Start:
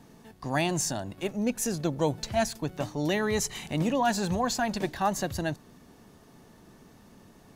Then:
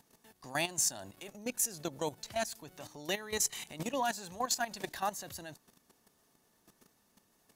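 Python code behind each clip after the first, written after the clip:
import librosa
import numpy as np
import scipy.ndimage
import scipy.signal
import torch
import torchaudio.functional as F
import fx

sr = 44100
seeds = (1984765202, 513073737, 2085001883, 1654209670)

y = fx.high_shelf(x, sr, hz=5700.0, db=11.0)
y = fx.level_steps(y, sr, step_db=13)
y = fx.low_shelf(y, sr, hz=340.0, db=-10.0)
y = F.gain(torch.from_numpy(y), -3.0).numpy()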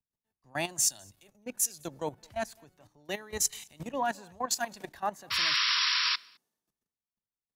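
y = fx.spec_paint(x, sr, seeds[0], shape='noise', start_s=5.3, length_s=0.86, low_hz=960.0, high_hz=5700.0, level_db=-29.0)
y = y + 10.0 ** (-23.0 / 20.0) * np.pad(y, (int(213 * sr / 1000.0), 0))[:len(y)]
y = fx.band_widen(y, sr, depth_pct=100)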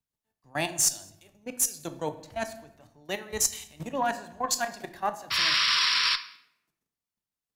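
y = fx.room_shoebox(x, sr, seeds[1], volume_m3=200.0, walls='mixed', distance_m=0.36)
y = fx.cheby_harmonics(y, sr, harmonics=(2, 3, 5, 7), levels_db=(-19, -25, -28, -32), full_scale_db=-12.5)
y = F.gain(torch.from_numpy(y), 3.5).numpy()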